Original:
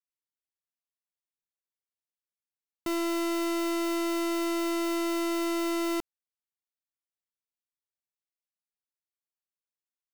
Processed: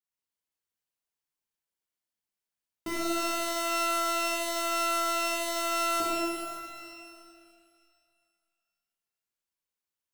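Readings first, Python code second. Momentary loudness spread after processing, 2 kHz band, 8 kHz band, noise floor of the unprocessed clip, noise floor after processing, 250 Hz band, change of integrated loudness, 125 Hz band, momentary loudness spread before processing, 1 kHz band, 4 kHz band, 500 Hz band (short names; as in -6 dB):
15 LU, +5.0 dB, +6.0 dB, under -85 dBFS, under -85 dBFS, -8.5 dB, +0.5 dB, n/a, 3 LU, +6.0 dB, +4.5 dB, -1.0 dB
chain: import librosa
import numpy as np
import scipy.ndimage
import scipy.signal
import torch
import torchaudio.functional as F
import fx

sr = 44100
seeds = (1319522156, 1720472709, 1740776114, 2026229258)

y = fx.rev_shimmer(x, sr, seeds[0], rt60_s=2.2, semitones=12, shimmer_db=-8, drr_db=-8.0)
y = F.gain(torch.from_numpy(y), -5.0).numpy()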